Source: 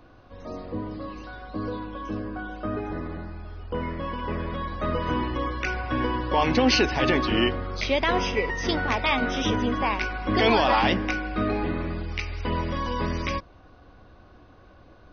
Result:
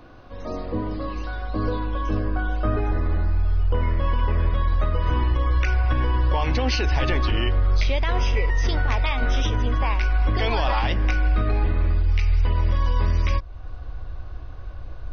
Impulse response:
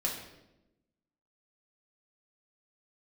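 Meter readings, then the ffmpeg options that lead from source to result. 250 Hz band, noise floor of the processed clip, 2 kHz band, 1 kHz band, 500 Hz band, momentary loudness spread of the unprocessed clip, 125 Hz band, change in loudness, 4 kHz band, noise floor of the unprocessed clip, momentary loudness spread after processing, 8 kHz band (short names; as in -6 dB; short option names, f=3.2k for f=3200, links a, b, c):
-4.0 dB, -35 dBFS, -2.0 dB, -2.0 dB, -3.0 dB, 14 LU, +9.5 dB, +2.5 dB, -3.0 dB, -52 dBFS, 13 LU, n/a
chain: -af "asubboost=boost=10:cutoff=68,alimiter=limit=-18dB:level=0:latency=1:release=334,volume=5.5dB"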